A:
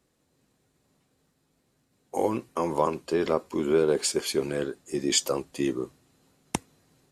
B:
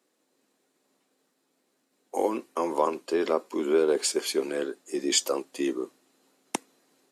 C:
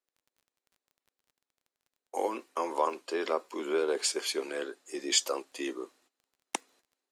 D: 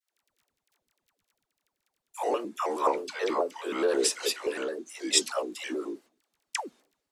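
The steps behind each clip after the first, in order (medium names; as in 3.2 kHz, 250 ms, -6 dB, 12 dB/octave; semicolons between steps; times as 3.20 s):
high-pass 250 Hz 24 dB/octave
gate -58 dBFS, range -17 dB; frequency weighting A; crackle 23 per s -50 dBFS; trim -2 dB
phase dispersion lows, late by 149 ms, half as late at 530 Hz; vibrato with a chosen wave square 4.7 Hz, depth 160 cents; trim +3 dB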